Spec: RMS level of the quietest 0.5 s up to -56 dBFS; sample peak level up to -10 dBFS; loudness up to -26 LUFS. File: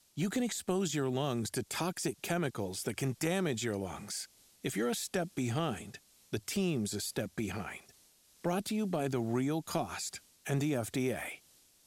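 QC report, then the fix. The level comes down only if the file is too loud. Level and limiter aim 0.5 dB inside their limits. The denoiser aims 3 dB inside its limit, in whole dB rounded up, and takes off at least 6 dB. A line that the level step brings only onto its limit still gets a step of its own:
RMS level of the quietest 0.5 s -65 dBFS: pass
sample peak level -17.5 dBFS: pass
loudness -35.0 LUFS: pass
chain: none needed

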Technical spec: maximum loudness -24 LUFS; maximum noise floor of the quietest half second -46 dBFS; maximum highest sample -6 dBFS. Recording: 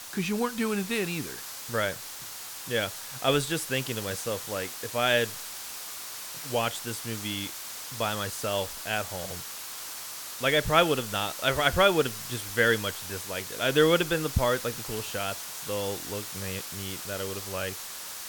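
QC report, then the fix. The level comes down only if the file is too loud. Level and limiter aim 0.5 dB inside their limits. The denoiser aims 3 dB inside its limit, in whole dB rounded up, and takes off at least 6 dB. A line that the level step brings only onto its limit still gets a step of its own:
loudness -29.0 LUFS: pass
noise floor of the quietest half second -41 dBFS: fail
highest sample -7.0 dBFS: pass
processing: noise reduction 8 dB, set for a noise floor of -41 dBFS

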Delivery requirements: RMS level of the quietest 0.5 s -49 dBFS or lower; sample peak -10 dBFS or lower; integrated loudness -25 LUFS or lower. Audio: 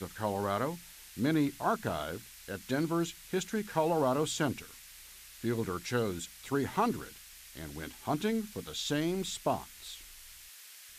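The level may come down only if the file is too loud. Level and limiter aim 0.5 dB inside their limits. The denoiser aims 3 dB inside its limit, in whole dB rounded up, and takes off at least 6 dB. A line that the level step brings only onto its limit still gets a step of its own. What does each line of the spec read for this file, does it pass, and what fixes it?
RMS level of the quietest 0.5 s -52 dBFS: pass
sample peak -16.0 dBFS: pass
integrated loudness -33.5 LUFS: pass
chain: none needed

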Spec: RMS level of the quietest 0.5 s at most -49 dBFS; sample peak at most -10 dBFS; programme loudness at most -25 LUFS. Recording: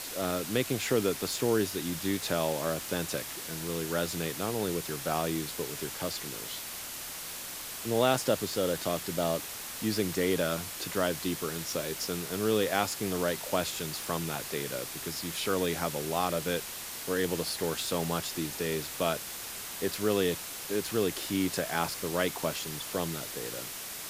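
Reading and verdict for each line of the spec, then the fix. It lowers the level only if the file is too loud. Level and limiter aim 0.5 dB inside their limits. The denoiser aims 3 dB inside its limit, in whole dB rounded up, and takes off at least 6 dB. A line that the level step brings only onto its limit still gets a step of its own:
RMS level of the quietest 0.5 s -40 dBFS: fail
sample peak -11.0 dBFS: pass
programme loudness -31.5 LUFS: pass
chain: noise reduction 12 dB, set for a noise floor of -40 dBFS

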